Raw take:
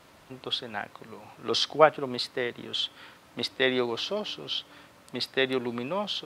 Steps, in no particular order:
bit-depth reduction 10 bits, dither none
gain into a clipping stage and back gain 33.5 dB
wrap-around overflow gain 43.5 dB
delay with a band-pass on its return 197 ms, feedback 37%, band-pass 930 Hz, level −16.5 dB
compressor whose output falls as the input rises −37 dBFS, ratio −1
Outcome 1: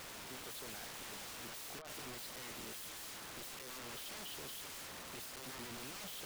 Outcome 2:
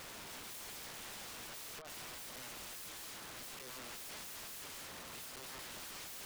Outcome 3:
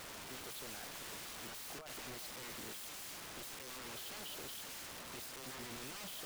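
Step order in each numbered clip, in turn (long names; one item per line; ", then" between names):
bit-depth reduction, then compressor whose output falls as the input rises, then delay with a band-pass on its return, then gain into a clipping stage and back, then wrap-around overflow
bit-depth reduction, then compressor whose output falls as the input rises, then delay with a band-pass on its return, then wrap-around overflow, then gain into a clipping stage and back
delay with a band-pass on its return, then compressor whose output falls as the input rises, then gain into a clipping stage and back, then wrap-around overflow, then bit-depth reduction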